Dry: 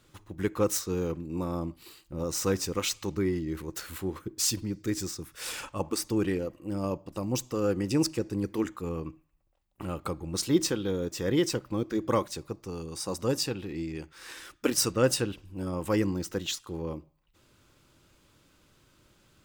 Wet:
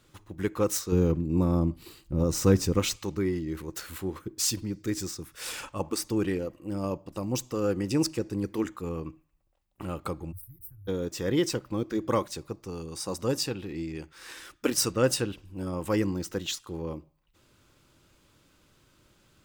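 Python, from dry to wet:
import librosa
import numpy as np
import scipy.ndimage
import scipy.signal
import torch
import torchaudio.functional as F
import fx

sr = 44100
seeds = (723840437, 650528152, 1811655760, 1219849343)

y = fx.low_shelf(x, sr, hz=360.0, db=11.5, at=(0.92, 2.96))
y = fx.cheby2_bandstop(y, sr, low_hz=190.0, high_hz=7100.0, order=4, stop_db=40, at=(10.31, 10.87), fade=0.02)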